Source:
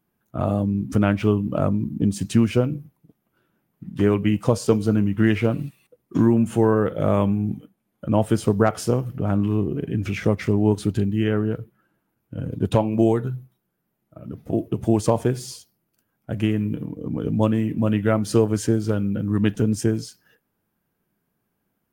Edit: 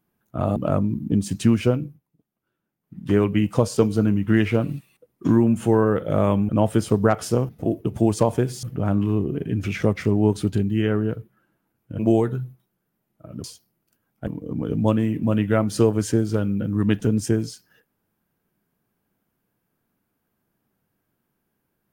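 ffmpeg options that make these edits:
-filter_complex "[0:a]asplit=10[a][b][c][d][e][f][g][h][i][j];[a]atrim=end=0.562[k];[b]atrim=start=1.458:end=2.9,asetpts=PTS-STARTPTS,afade=t=out:st=1.182:d=0.26:silence=0.266073[l];[c]atrim=start=2.9:end=3.7,asetpts=PTS-STARTPTS,volume=-11.5dB[m];[d]atrim=start=3.7:end=7.392,asetpts=PTS-STARTPTS,afade=t=in:d=0.26:silence=0.266073[n];[e]atrim=start=8.048:end=9.052[o];[f]atrim=start=14.358:end=15.502[p];[g]atrim=start=9.048:end=12.412[q];[h]atrim=start=12.908:end=14.362[r];[i]atrim=start=15.498:end=16.332[s];[j]atrim=start=16.818[t];[l][m][n]concat=n=3:v=0:a=1[u];[k][u]acrossfade=d=0.004:c1=hsin:c2=hsin[v];[v][o]acrossfade=d=0.004:c1=hsin:c2=hsin[w];[w][p]acrossfade=d=0.004:c1=hsin:c2=hsin[x];[x][q]acrossfade=d=0.004:c1=hsin:c2=hsin[y];[y][r]acrossfade=d=0.004:c1=hsin:c2=hsin[z];[z][s]acrossfade=d=0.004:c1=hsin:c2=hsin[aa];[aa][t]acrossfade=d=0.004:c1=hsin:c2=hsin"

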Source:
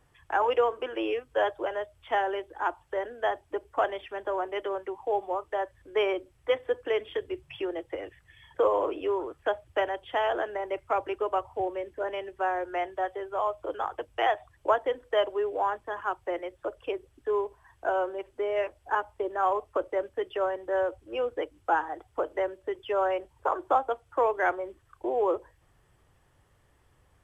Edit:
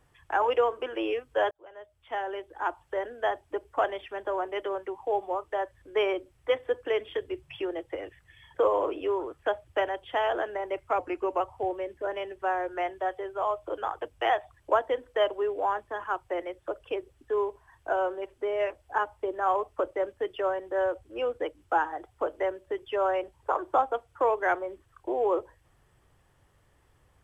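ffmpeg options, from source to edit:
-filter_complex "[0:a]asplit=4[a][b][c][d];[a]atrim=end=1.51,asetpts=PTS-STARTPTS,afade=t=out:st=1.506:d=0.004:c=hsin[e];[b]atrim=start=1.51:end=10.994,asetpts=PTS-STARTPTS,afade=t=in:d=1.29[f];[c]atrim=start=10.99:end=11.37,asetpts=PTS-STARTPTS,asetrate=40572,aresample=44100,atrim=end_sample=18215,asetpts=PTS-STARTPTS[g];[d]atrim=start=11.366[h];[e][f]concat=n=2:v=0:a=1[i];[i][g]acrossfade=d=0.004:c1=hsin:c2=hsin[j];[j][h]acrossfade=d=0.004:c1=hsin:c2=hsin"

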